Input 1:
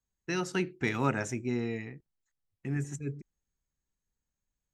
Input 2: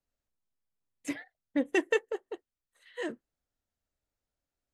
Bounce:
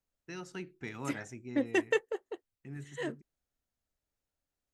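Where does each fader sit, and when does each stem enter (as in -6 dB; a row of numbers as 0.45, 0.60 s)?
-11.5, -1.5 dB; 0.00, 0.00 s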